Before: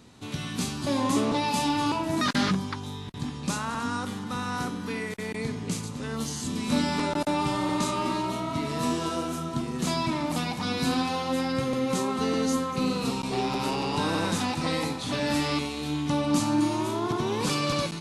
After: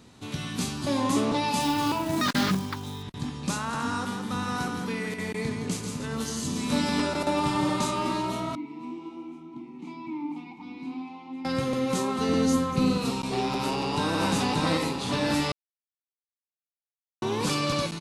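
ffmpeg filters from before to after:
-filter_complex "[0:a]asettb=1/sr,asplit=3[a][b][c];[a]atrim=end=1.604[d];[b]atrim=start=1.6:end=3.03,asetpts=PTS-STARTPTS,afade=t=in:d=0.004:c=qsin,afade=t=out:st=1.426:d=0.004:c=qsin,acrusher=bits=4:mode=log:mix=0:aa=0.000001[e];[c]atrim=start=3.026[f];[d][e]acrossfade=d=0.004:c1=hsin:c2=qsin[g];[g][f]acrossfade=d=0.004:c1=qsin:c2=hsin,asettb=1/sr,asplit=3[h][i][j];[h]atrim=end=3.564[k];[i]atrim=start=3.56:end=7.86,asetpts=PTS-STARTPTS,afade=t=in:d=0.004:c=qsin,afade=t=out:st=4.296:d=0.004:c=qsin,aecho=1:1:168:0.531,atrim=end_sample=189630[l];[j]atrim=start=7.856[m];[k][l]acrossfade=d=0.004:c1=hsin:c2=qsin[n];[n][m]acrossfade=d=0.004:c1=qsin:c2=hsin,asettb=1/sr,asplit=3[o][p][q];[o]atrim=end=8.554[r];[p]atrim=start=8.55:end=11.45,asetpts=PTS-STARTPTS,afade=t=in:d=0.004:c=qsin,afade=t=out:st=2.896:d=0.004:c=qsin,asplit=3[s][t][u];[s]bandpass=f=300:t=q:w=8,volume=0dB[v];[t]bandpass=f=870:t=q:w=8,volume=-6dB[w];[u]bandpass=f=2.24k:t=q:w=8,volume=-9dB[x];[v][w][x]amix=inputs=3:normalize=0[y];[q]atrim=start=11.446[z];[r][y]acrossfade=d=0.004:c1=hsin:c2=qsin[aa];[aa][z]acrossfade=d=0.004:c1=qsin:c2=hsin,asettb=1/sr,asplit=3[ab][ac][ad];[ab]atrim=end=12.294[ae];[ac]atrim=start=12.29:end=12.98,asetpts=PTS-STARTPTS,afade=t=in:d=0.004:c=qsin,afade=t=out:st=0.686:d=0.004:c=qsin,lowshelf=f=190:g=9.5[af];[ad]atrim=start=12.976[ag];[ae][af]acrossfade=d=0.004:c1=hsin:c2=qsin[ah];[ah][ag]acrossfade=d=0.004:c1=qsin:c2=hsin,asplit=2[ai][aj];[aj]afade=t=in:st=13.61:d=0.01,afade=t=out:st=14.19:d=0.01,aecho=0:1:580|1160|1740|2320|2900|3480|4060|4640:0.794328|0.436881|0.240284|0.132156|0.072686|0.0399773|0.0219875|0.0120931[ak];[ai][ak]amix=inputs=2:normalize=0,asplit=3[al][am][an];[al]atrim=end=15.52,asetpts=PTS-STARTPTS,afade=t=out:st=15.516:d=0.004:c=hsin[ao];[am]atrim=start=15.52:end=17.22,asetpts=PTS-STARTPTS,volume=0[ap];[an]atrim=start=17.22,asetpts=PTS-STARTPTS,afade=t=in:d=0.004:c=hsin[aq];[ao][ap][aq]concat=n=3:v=0:a=1"

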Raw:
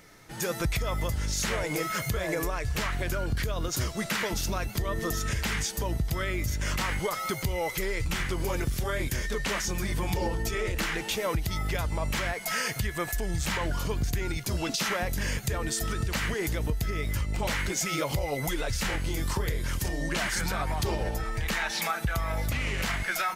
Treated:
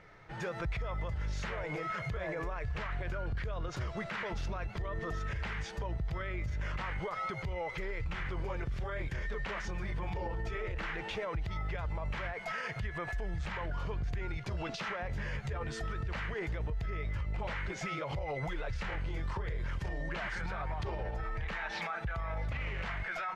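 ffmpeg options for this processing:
-filter_complex "[0:a]asettb=1/sr,asplit=3[a][b][c];[a]atrim=end=15.084[d];[b]atrim=start=15.08:end=15.8,asetpts=PTS-STARTPTS,afade=t=in:d=0.004:c=qsin,afade=t=out:st=0.716:d=0.004:c=qsin,asplit=2[e][f];[f]adelay=14,volume=-3.5dB[g];[e][g]amix=inputs=2:normalize=0,atrim=end_sample=31752[h];[c]atrim=start=15.796[i];[d][h]acrossfade=d=0.004:c1=hsin:c2=qsin[j];[j][i]acrossfade=d=0.004:c1=qsin:c2=hsin,lowpass=2.2k,equalizer=f=260:t=o:w=0.81:g=-10,alimiter=level_in=5dB:limit=-24dB:level=0:latency=1:release=70,volume=-5dB"

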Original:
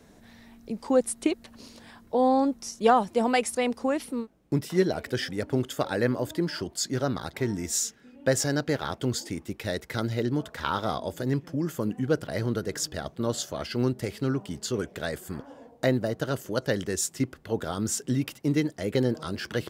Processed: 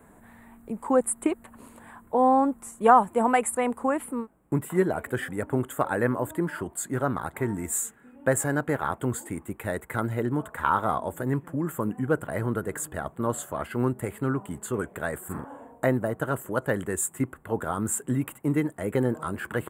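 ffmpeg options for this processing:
-filter_complex "[0:a]asettb=1/sr,asplit=3[a][b][c];[a]atrim=end=15.254[d];[b]atrim=start=15.25:end=15.86,asetpts=PTS-STARTPTS,afade=t=in:d=0.004:c=qsin,afade=t=out:st=0.606:d=0.004:c=qsin,asplit=2[e][f];[f]adelay=42,volume=-3dB[g];[e][g]amix=inputs=2:normalize=0,atrim=end_sample=26901[h];[c]atrim=start=15.856[i];[d][h]acrossfade=d=0.004:c1=hsin:c2=qsin[j];[j][i]acrossfade=d=0.004:c1=qsin:c2=hsin,firequalizer=gain_entry='entry(570,0);entry(990,8);entry(5400,-28);entry(7600,4)':delay=0.05:min_phase=1"

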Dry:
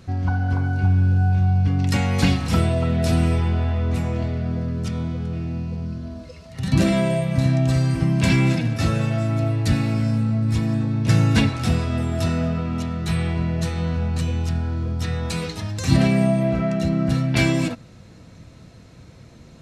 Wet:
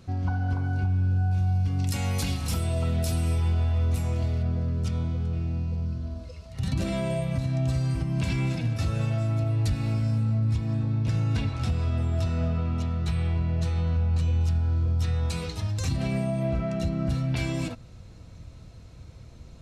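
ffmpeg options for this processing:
-filter_complex "[0:a]asettb=1/sr,asplit=3[a][b][c];[a]atrim=end=1.314[d];[b]atrim=start=1.31:end=4.43,asetpts=PTS-STARTPTS,afade=t=in:d=0.004:c=qsin,afade=t=out:st=3.116:d=0.004:c=qsin,aemphasis=mode=production:type=50fm[e];[c]atrim=start=4.426[f];[d][e]acrossfade=d=0.004:c1=hsin:c2=qsin[g];[g][f]acrossfade=d=0.004:c1=qsin:c2=hsin,asettb=1/sr,asplit=3[h][i][j];[h]atrim=end=10.394[k];[i]atrim=start=10.39:end=14.41,asetpts=PTS-STARTPTS,afade=t=in:d=0.004:c=qsin,afade=t=out:st=4.016:d=0.004:c=qsin,highshelf=f=9.2k:g=-11.5[l];[j]atrim=start=14.406[m];[k][l]acrossfade=d=0.004:c1=hsin:c2=qsin[n];[n][m]acrossfade=d=0.004:c1=qsin:c2=hsin,asubboost=boost=4:cutoff=89,alimiter=limit=-13.5dB:level=0:latency=1:release=221,equalizer=f=1.8k:w=3:g=-4.5,volume=-4.5dB"

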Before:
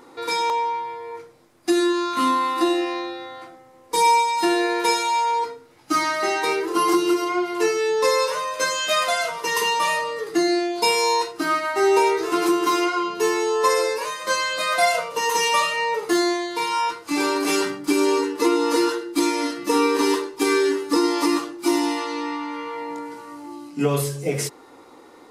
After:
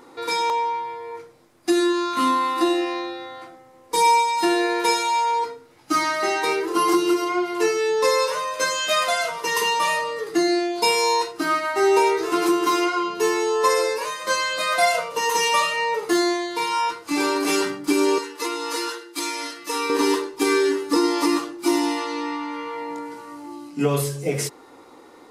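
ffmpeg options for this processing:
-filter_complex "[0:a]asettb=1/sr,asplit=3[a][b][c];[a]atrim=end=18.184[d];[b]atrim=start=18.18:end=19.9,asetpts=PTS-STARTPTS,afade=t=in:d=0.004:c=qsin,afade=t=out:st=1.716:d=0.004:c=qsin,highpass=f=1.3k:p=1[e];[c]atrim=start=19.896[f];[d][e]acrossfade=d=0.004:c1=hsin:c2=qsin[g];[g][f]acrossfade=d=0.004:c1=qsin:c2=hsin"

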